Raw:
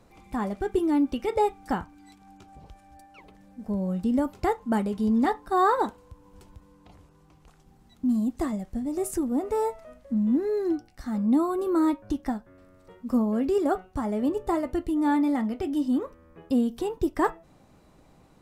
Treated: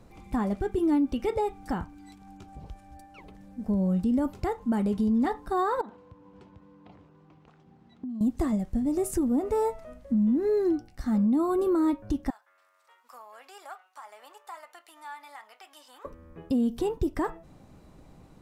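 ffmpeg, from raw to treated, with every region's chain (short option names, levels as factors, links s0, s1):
-filter_complex "[0:a]asettb=1/sr,asplit=3[s0][s1][s2];[s0]atrim=end=5.814[s3];[s1]atrim=start=5.81:end=8.21,asetpts=PTS-STARTPTS,afade=t=in:d=0.004:c=qsin,afade=t=out:st=2.396:d=0.004:c=qsin,acompressor=threshold=0.0158:ratio=12:attack=3.2:release=140:knee=1:detection=peak,highpass=160,lowpass=3200[s4];[s2]atrim=start=8.206[s5];[s3][s4]acrossfade=d=0.004:c1=hsin:c2=qsin[s6];[s6][s5]acrossfade=d=0.004:c1=qsin:c2=hsin,asettb=1/sr,asplit=3[s7][s8][s9];[s7]atrim=end=12.304[s10];[s8]atrim=start=12.3:end=16.05,asetpts=PTS-STARTPTS,afade=t=in:d=0.004:c=qsin,afade=t=out:st=3.746:d=0.004:c=qsin,aeval=exprs='if(lt(val(0),0),0.708*val(0),val(0))':c=same,highpass=f=900:w=0.5412,highpass=f=900:w=1.3066,acompressor=threshold=0.00224:ratio=1.5:attack=3.2:release=140:knee=1:detection=peak[s11];[s9]atrim=start=16.046[s12];[s10][s11]acrossfade=d=0.004:c1=hsin:c2=qsin[s13];[s13][s12]acrossfade=d=0.004:c1=qsin:c2=hsin,lowshelf=f=300:g=6.5,alimiter=limit=0.112:level=0:latency=1:release=103"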